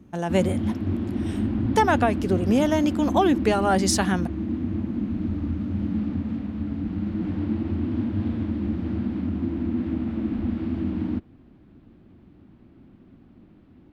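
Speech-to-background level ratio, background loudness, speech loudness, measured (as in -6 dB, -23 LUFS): 4.5 dB, -27.5 LUFS, -23.0 LUFS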